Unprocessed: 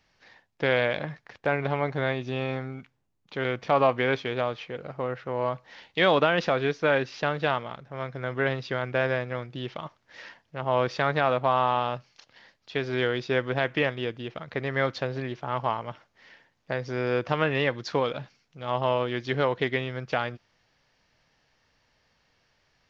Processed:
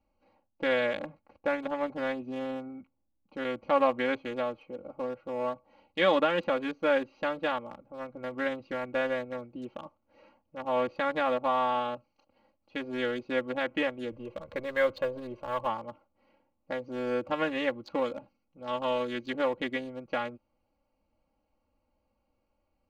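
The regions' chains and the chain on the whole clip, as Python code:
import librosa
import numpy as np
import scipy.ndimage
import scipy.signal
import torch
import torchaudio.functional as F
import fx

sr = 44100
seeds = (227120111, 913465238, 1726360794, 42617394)

y = fx.chain(x, sr, fx.law_mismatch(coded='mu'),
    fx.comb(ms=1.9, depth=0.51), at=(14.12, 15.67))
y = fx.chain(y, sr, fx.high_shelf(hz=4300.0, db=12.0),
    fx.notch(hz=740.0, q=5.7), at=(18.67, 19.3))
y = fx.wiener(y, sr, points=25)
y = y + 0.96 * np.pad(y, (int(3.6 * sr / 1000.0), 0))[:len(y)]
y = fx.dynamic_eq(y, sr, hz=5500.0, q=3.7, threshold_db=-57.0, ratio=4.0, max_db=-7)
y = y * librosa.db_to_amplitude(-6.0)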